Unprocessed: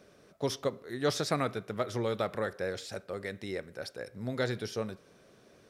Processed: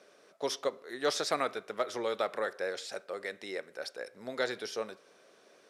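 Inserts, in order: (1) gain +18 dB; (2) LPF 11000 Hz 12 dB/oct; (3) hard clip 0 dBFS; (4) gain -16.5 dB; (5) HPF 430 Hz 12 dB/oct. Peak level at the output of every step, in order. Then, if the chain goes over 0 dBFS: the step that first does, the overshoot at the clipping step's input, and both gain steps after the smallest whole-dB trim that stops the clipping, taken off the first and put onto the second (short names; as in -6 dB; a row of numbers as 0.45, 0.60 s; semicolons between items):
+3.0, +3.0, 0.0, -16.5, -15.0 dBFS; step 1, 3.0 dB; step 1 +15 dB, step 4 -13.5 dB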